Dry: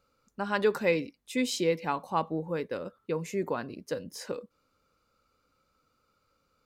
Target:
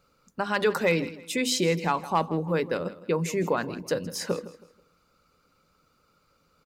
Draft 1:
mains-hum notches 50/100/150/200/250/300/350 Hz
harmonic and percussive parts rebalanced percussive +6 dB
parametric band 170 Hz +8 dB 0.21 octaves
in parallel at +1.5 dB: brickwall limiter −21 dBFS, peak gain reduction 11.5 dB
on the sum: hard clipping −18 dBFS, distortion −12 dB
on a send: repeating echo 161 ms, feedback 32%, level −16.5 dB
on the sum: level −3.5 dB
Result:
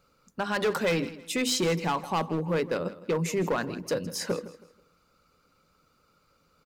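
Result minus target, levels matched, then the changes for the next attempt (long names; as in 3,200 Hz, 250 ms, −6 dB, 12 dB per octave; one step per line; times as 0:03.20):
hard clipping: distortion +18 dB
change: hard clipping −10.5 dBFS, distortion −29 dB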